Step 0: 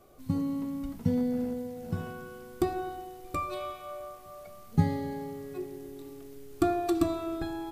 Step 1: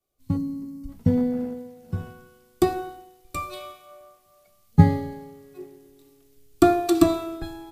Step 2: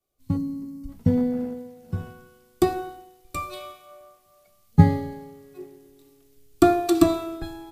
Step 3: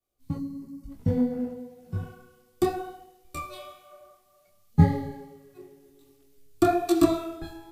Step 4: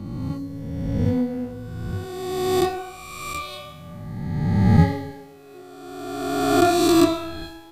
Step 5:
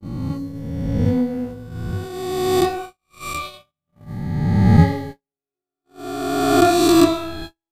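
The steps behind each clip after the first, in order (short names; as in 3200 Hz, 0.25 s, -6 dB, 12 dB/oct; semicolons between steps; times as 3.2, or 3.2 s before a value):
spectral gain 0.37–0.89, 430–4100 Hz -12 dB; three-band expander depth 100%; gain +2.5 dB
nothing audible
detuned doubles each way 34 cents
spectral swells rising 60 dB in 1.94 s; bell 3400 Hz +7 dB 2.4 oct
gate -33 dBFS, range -50 dB; gain +3 dB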